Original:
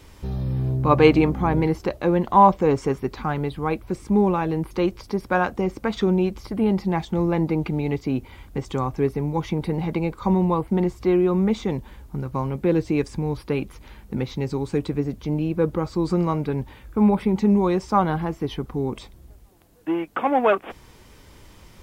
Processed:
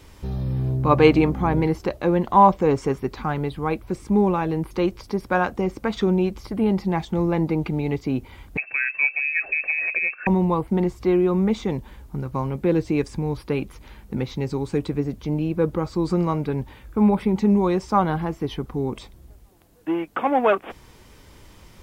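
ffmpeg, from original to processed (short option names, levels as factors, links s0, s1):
-filter_complex "[0:a]asettb=1/sr,asplit=3[s0][s1][s2];[s0]atrim=end=8.574[s3];[s1]atrim=start=8.57:end=10.27,asetpts=PTS-STARTPTS,afade=t=in:d=0.004:c=qsin,afade=t=out:st=1.696:d=0.004:c=qsin,lowpass=f=2300:t=q:w=0.5098,lowpass=f=2300:t=q:w=0.6013,lowpass=f=2300:t=q:w=0.9,lowpass=f=2300:t=q:w=2.563,afreqshift=-2700[s4];[s2]atrim=start=10.266[s5];[s3][s4]acrossfade=d=0.004:c1=hsin:c2=qsin[s6];[s6][s5]acrossfade=d=0.004:c1=qsin:c2=hsin"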